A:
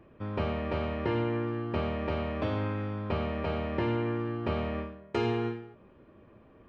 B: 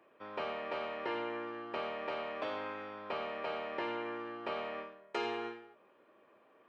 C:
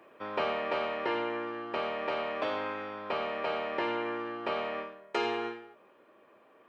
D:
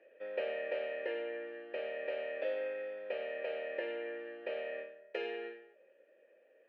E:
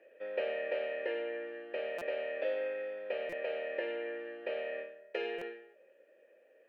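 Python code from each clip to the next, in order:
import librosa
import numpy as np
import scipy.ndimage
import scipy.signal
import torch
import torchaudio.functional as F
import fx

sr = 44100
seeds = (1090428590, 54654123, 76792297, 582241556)

y1 = scipy.signal.sosfilt(scipy.signal.butter(2, 550.0, 'highpass', fs=sr, output='sos'), x)
y1 = y1 * 10.0 ** (-2.0 / 20.0)
y2 = fx.rider(y1, sr, range_db=10, speed_s=2.0)
y2 = y2 * 10.0 ** (5.5 / 20.0)
y3 = fx.vowel_filter(y2, sr, vowel='e')
y3 = y3 * 10.0 ** (3.5 / 20.0)
y4 = fx.buffer_glitch(y3, sr, at_s=(1.98, 3.29, 5.38), block=256, repeats=5)
y4 = y4 * 10.0 ** (2.0 / 20.0)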